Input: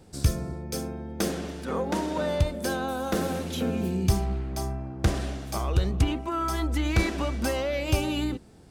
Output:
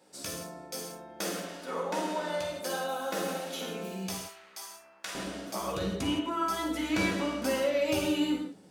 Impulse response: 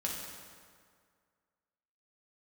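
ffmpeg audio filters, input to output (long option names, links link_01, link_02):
-filter_complex "[0:a]asetnsamples=nb_out_samples=441:pad=0,asendcmd='4.11 highpass f 1300;5.15 highpass f 220',highpass=460[link_01];[1:a]atrim=start_sample=2205,afade=type=out:start_time=0.23:duration=0.01,atrim=end_sample=10584[link_02];[link_01][link_02]afir=irnorm=-1:irlink=0,volume=-3.5dB"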